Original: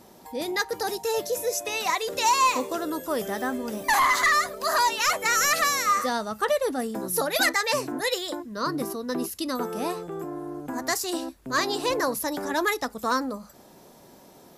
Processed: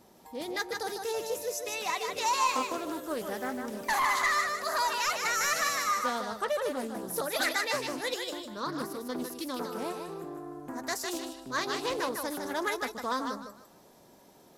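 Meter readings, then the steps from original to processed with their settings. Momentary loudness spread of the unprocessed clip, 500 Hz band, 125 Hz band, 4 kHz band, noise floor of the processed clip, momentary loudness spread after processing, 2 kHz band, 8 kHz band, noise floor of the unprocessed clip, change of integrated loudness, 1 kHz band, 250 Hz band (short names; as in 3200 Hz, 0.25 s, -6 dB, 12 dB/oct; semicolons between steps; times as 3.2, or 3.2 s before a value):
10 LU, -6.0 dB, -7.0 dB, -5.5 dB, -58 dBFS, 10 LU, -5.5 dB, -6.5 dB, -52 dBFS, -6.0 dB, -6.0 dB, -6.5 dB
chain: thinning echo 0.153 s, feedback 29%, high-pass 420 Hz, level -4.5 dB; Doppler distortion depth 0.25 ms; gain -7 dB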